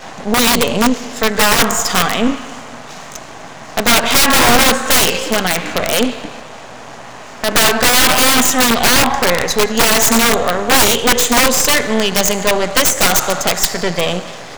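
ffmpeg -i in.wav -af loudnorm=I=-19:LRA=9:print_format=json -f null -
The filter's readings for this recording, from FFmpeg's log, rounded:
"input_i" : "-12.6",
"input_tp" : "2.3",
"input_lra" : "3.7",
"input_thresh" : "-23.2",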